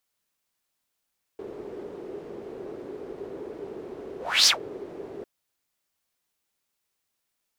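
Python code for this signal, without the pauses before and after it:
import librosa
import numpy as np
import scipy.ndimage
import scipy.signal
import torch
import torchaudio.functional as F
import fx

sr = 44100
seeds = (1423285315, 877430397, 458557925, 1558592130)

y = fx.whoosh(sr, seeds[0], length_s=3.85, peak_s=3.08, rise_s=0.29, fall_s=0.12, ends_hz=400.0, peak_hz=5200.0, q=5.4, swell_db=22.0)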